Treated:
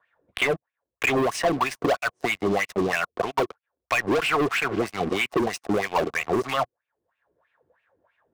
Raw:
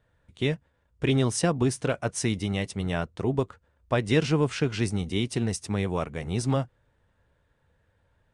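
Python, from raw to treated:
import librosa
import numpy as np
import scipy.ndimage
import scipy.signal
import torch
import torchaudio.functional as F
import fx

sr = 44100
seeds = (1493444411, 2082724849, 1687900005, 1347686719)

y = fx.wah_lfo(x, sr, hz=3.1, low_hz=320.0, high_hz=2600.0, q=5.5)
y = fx.leveller(y, sr, passes=5)
y = fx.small_body(y, sr, hz=(710.0, 1100.0), ring_ms=25, db=7)
y = fx.band_squash(y, sr, depth_pct=70)
y = y * librosa.db_to_amplitude(3.0)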